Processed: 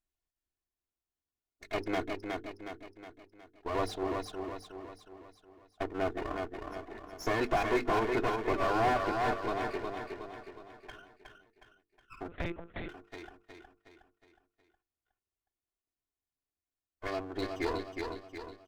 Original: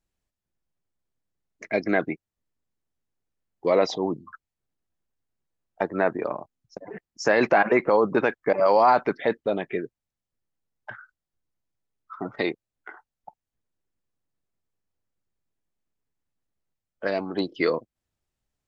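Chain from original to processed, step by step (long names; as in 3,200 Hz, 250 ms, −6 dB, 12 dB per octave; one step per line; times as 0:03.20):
lower of the sound and its delayed copy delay 2.8 ms
0:02.10–0:03.75: output level in coarse steps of 13 dB
mains-hum notches 50/100/150/200/250/300/350/400/450 Hz
on a send: repeating echo 365 ms, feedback 48%, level −5 dB
0:12.28–0:12.89: on the sum: one-pitch LPC vocoder at 8 kHz 170 Hz
slew-rate limiting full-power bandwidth 130 Hz
level −8 dB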